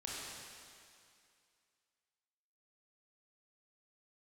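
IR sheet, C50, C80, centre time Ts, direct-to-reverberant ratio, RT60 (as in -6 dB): -3.5 dB, -1.5 dB, 159 ms, -6.0 dB, 2.4 s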